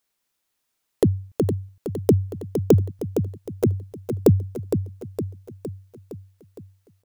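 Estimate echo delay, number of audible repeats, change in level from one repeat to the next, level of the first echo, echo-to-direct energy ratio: 462 ms, 6, -5.0 dB, -8.0 dB, -6.5 dB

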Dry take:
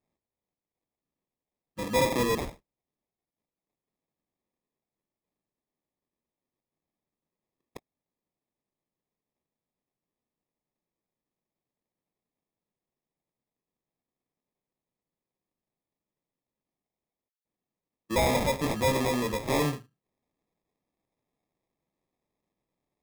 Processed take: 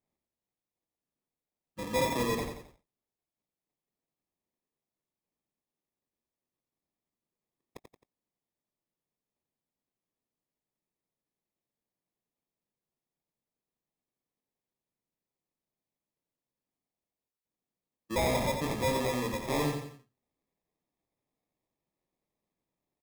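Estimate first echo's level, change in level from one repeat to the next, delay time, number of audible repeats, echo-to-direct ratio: -7.0 dB, -7.5 dB, 88 ms, 3, -6.0 dB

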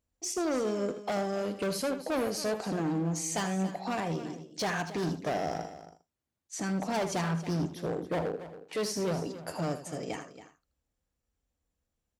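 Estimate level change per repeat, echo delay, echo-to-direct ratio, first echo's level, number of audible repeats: no regular repeats, 79 ms, -9.0 dB, -11.0 dB, 3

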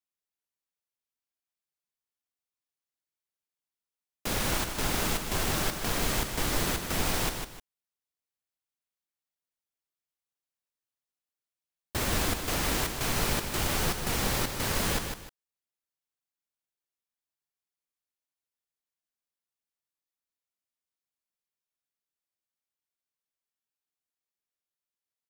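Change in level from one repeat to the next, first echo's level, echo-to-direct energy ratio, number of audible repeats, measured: -11.0 dB, -6.5 dB, -6.0 dB, 2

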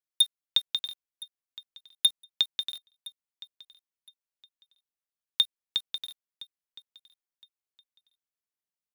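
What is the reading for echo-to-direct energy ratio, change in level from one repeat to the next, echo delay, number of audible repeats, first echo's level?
-20.5 dB, -13.0 dB, 1015 ms, 2, -20.5 dB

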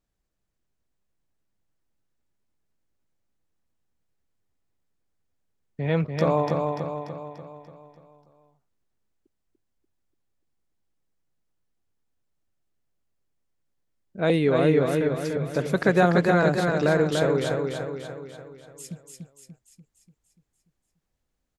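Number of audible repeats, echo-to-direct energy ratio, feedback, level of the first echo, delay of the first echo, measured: 6, -2.5 dB, 52%, -4.0 dB, 292 ms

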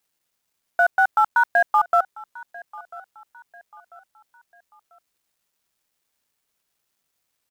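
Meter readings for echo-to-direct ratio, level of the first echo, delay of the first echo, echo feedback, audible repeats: -20.5 dB, -21.0 dB, 993 ms, 39%, 2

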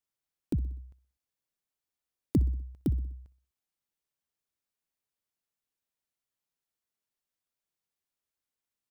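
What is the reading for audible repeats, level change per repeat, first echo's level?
3, -5.5 dB, -19.5 dB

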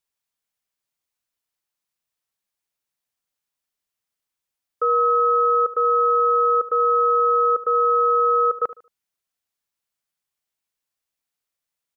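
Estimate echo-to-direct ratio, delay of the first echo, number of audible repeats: -15.5 dB, 75 ms, 2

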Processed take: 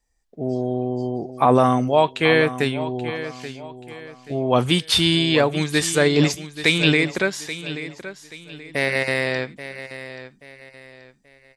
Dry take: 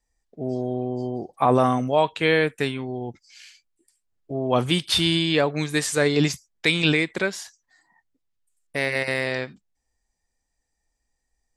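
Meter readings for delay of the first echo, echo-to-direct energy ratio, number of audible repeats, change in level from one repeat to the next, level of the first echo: 831 ms, -12.5 dB, 3, -9.0 dB, -13.0 dB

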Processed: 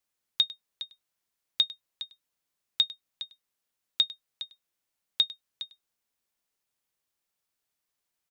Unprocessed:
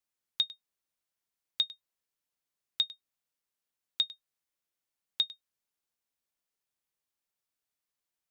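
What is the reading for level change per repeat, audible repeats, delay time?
no regular repeats, 1, 411 ms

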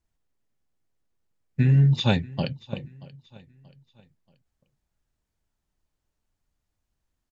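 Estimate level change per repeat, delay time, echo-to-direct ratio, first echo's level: -8.0 dB, 631 ms, -20.5 dB, -21.0 dB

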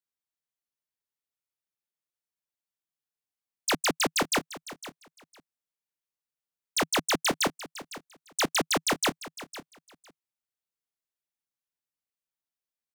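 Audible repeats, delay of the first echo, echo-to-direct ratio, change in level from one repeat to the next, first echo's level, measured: 2, 506 ms, -15.5 dB, -15.5 dB, -15.5 dB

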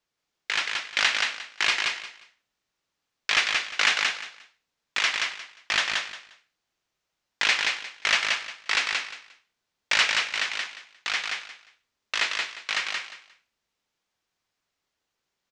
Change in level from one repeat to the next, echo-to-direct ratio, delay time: -13.0 dB, -3.5 dB, 177 ms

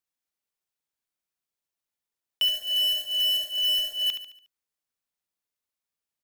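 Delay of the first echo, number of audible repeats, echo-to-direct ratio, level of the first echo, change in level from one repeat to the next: 72 ms, 4, -8.0 dB, -9.0 dB, -7.0 dB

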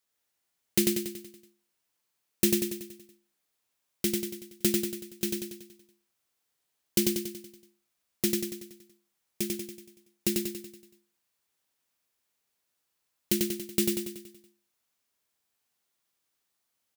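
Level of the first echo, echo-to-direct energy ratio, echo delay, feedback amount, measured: -3.0 dB, -1.5 dB, 94 ms, 52%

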